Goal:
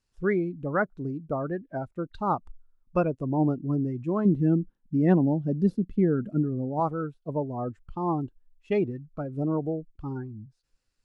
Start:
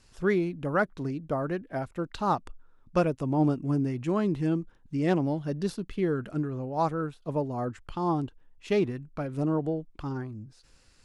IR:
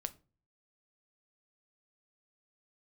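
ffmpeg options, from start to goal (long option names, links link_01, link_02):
-filter_complex "[0:a]asettb=1/sr,asplit=3[link_01][link_02][link_03];[link_01]atrim=end=4.254[link_04];[link_02]atrim=start=4.25:end=6.8,asetpts=PTS-STARTPTS,afade=type=in:duration=0.004:curve=qsin,afade=type=out:start_time=2.546:duration=0.004:curve=qsin,equalizer=frequency=210:width=1.4:gain=9[link_05];[link_03]atrim=start=6.796[link_06];[link_04][link_05]acrossfade=duration=0.004:curve1=hsin:curve2=qsin[link_07];[link_07][link_06]acrossfade=duration=0.004:curve1=qsin:curve2=hsin,afftdn=noise_reduction=19:noise_floor=-34"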